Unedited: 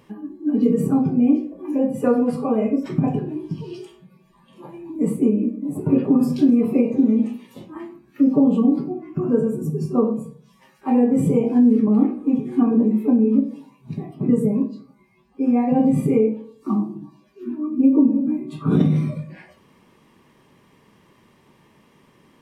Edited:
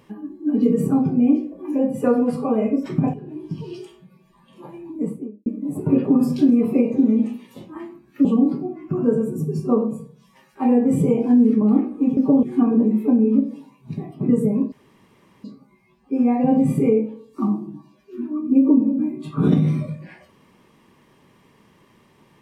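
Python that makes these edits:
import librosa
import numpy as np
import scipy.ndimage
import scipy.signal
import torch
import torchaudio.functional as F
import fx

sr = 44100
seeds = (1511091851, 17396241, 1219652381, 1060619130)

y = fx.studio_fade_out(x, sr, start_s=4.75, length_s=0.71)
y = fx.edit(y, sr, fx.fade_in_from(start_s=3.14, length_s=0.45, floor_db=-15.0),
    fx.move(start_s=8.25, length_s=0.26, to_s=12.43),
    fx.insert_room_tone(at_s=14.72, length_s=0.72), tone=tone)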